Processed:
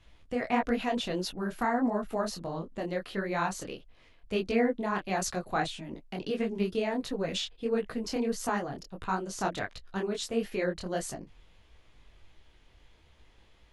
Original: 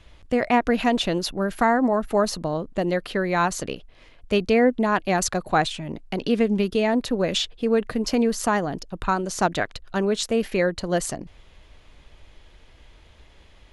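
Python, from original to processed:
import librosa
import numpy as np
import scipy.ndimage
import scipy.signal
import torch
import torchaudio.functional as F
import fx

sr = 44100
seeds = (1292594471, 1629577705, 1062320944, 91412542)

y = fx.notch(x, sr, hz=590.0, q=18.0)
y = fx.detune_double(y, sr, cents=53)
y = y * librosa.db_to_amplitude(-5.0)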